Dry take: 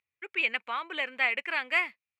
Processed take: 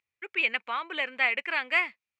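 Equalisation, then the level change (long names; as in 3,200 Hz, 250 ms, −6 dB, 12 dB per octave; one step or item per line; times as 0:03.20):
low-pass filter 7,600 Hz 12 dB per octave
+1.5 dB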